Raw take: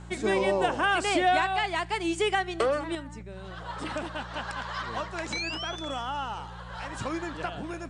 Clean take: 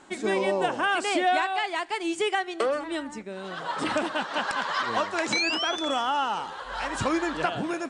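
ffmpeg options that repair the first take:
ffmpeg -i in.wav -af "bandreject=frequency=58.3:width_type=h:width=4,bandreject=frequency=116.6:width_type=h:width=4,bandreject=frequency=174.9:width_type=h:width=4,asetnsamples=nb_out_samples=441:pad=0,asendcmd='2.95 volume volume 7dB',volume=0dB" out.wav

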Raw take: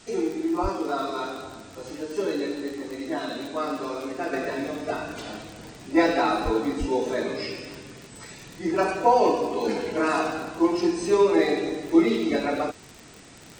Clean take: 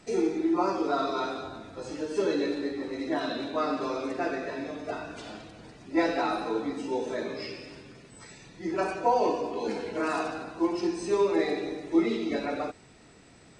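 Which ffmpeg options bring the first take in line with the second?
ffmpeg -i in.wav -filter_complex "[0:a]adeclick=threshold=4,asplit=3[link_01][link_02][link_03];[link_01]afade=type=out:start_time=0.62:duration=0.02[link_04];[link_02]highpass=frequency=140:width=0.5412,highpass=frequency=140:width=1.3066,afade=type=in:start_time=0.62:duration=0.02,afade=type=out:start_time=0.74:duration=0.02[link_05];[link_03]afade=type=in:start_time=0.74:duration=0.02[link_06];[link_04][link_05][link_06]amix=inputs=3:normalize=0,asplit=3[link_07][link_08][link_09];[link_07]afade=type=out:start_time=6.44:duration=0.02[link_10];[link_08]highpass=frequency=140:width=0.5412,highpass=frequency=140:width=1.3066,afade=type=in:start_time=6.44:duration=0.02,afade=type=out:start_time=6.56:duration=0.02[link_11];[link_09]afade=type=in:start_time=6.56:duration=0.02[link_12];[link_10][link_11][link_12]amix=inputs=3:normalize=0,asplit=3[link_13][link_14][link_15];[link_13]afade=type=out:start_time=6.79:duration=0.02[link_16];[link_14]highpass=frequency=140:width=0.5412,highpass=frequency=140:width=1.3066,afade=type=in:start_time=6.79:duration=0.02,afade=type=out:start_time=6.91:duration=0.02[link_17];[link_15]afade=type=in:start_time=6.91:duration=0.02[link_18];[link_16][link_17][link_18]amix=inputs=3:normalize=0,afwtdn=0.0032,asetnsamples=nb_out_samples=441:pad=0,asendcmd='4.33 volume volume -5.5dB',volume=0dB" out.wav

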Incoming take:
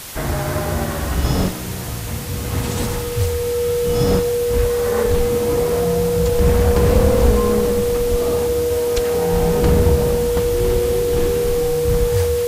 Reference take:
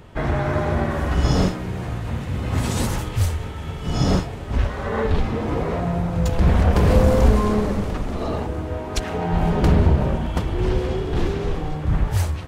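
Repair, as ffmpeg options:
ffmpeg -i in.wav -filter_complex "[0:a]bandreject=frequency=480:width=30,asplit=3[link_01][link_02][link_03];[link_01]afade=type=out:start_time=8.1:duration=0.02[link_04];[link_02]highpass=frequency=140:width=0.5412,highpass=frequency=140:width=1.3066,afade=type=in:start_time=8.1:duration=0.02,afade=type=out:start_time=8.22:duration=0.02[link_05];[link_03]afade=type=in:start_time=8.22:duration=0.02[link_06];[link_04][link_05][link_06]amix=inputs=3:normalize=0,afwtdn=0.025" out.wav

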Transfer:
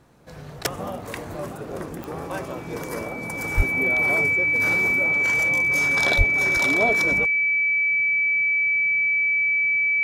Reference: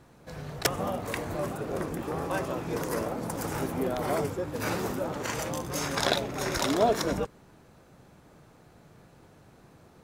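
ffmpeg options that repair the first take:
ffmpeg -i in.wav -filter_complex "[0:a]adeclick=threshold=4,bandreject=frequency=2300:width=30,asplit=3[link_01][link_02][link_03];[link_01]afade=type=out:start_time=3.56:duration=0.02[link_04];[link_02]highpass=frequency=140:width=0.5412,highpass=frequency=140:width=1.3066,afade=type=in:start_time=3.56:duration=0.02,afade=type=out:start_time=3.68:duration=0.02[link_05];[link_03]afade=type=in:start_time=3.68:duration=0.02[link_06];[link_04][link_05][link_06]amix=inputs=3:normalize=0,asplit=3[link_07][link_08][link_09];[link_07]afade=type=out:start_time=6.17:duration=0.02[link_10];[link_08]highpass=frequency=140:width=0.5412,highpass=frequency=140:width=1.3066,afade=type=in:start_time=6.17:duration=0.02,afade=type=out:start_time=6.29:duration=0.02[link_11];[link_09]afade=type=in:start_time=6.29:duration=0.02[link_12];[link_10][link_11][link_12]amix=inputs=3:normalize=0" out.wav

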